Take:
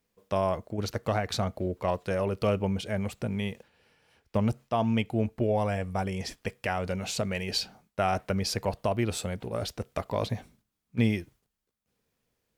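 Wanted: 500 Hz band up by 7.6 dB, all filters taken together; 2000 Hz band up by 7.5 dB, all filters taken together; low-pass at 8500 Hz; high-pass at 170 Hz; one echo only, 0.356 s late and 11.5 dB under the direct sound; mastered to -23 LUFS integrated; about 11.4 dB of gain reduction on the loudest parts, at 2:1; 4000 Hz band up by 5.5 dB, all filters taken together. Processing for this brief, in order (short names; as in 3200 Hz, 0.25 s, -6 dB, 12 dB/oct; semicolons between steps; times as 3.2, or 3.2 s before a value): HPF 170 Hz; LPF 8500 Hz; bell 500 Hz +9 dB; bell 2000 Hz +7.5 dB; bell 4000 Hz +5 dB; compressor 2:1, threshold -38 dBFS; echo 0.356 s -11.5 dB; gain +12 dB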